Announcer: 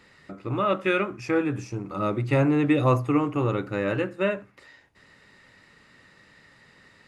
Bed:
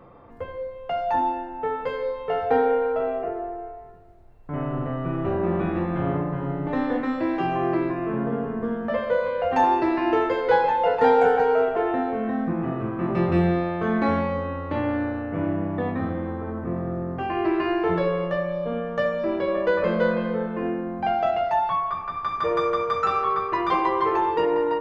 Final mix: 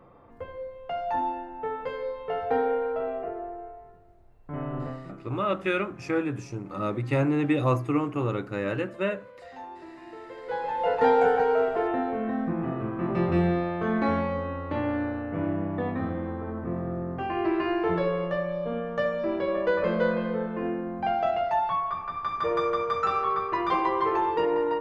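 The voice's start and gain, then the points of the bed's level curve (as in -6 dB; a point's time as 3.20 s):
4.80 s, -3.0 dB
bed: 4.87 s -5 dB
5.21 s -22.5 dB
10.17 s -22.5 dB
10.92 s -3 dB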